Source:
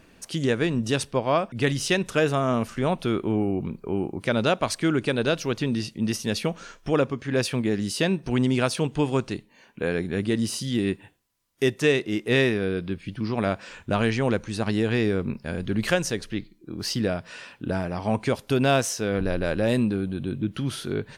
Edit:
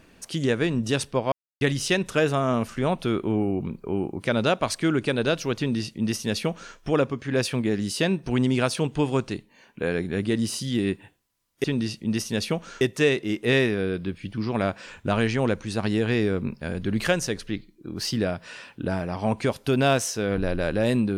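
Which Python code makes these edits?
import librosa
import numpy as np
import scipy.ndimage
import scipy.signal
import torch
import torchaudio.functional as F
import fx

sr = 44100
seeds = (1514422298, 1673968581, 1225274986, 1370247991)

y = fx.edit(x, sr, fx.silence(start_s=1.32, length_s=0.29),
    fx.duplicate(start_s=5.58, length_s=1.17, to_s=11.64), tone=tone)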